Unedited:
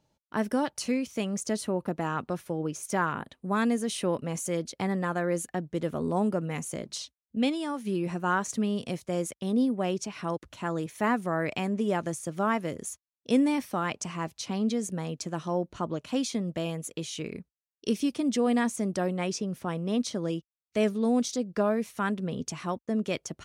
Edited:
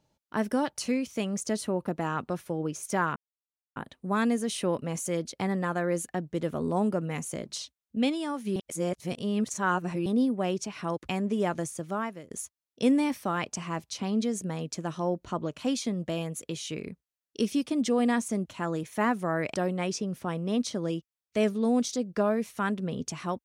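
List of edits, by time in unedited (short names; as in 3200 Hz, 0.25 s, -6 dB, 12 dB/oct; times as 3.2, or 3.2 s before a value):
3.16 insert silence 0.60 s
7.96–9.46 reverse
10.49–11.57 move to 18.94
12.17–12.79 fade out, to -18.5 dB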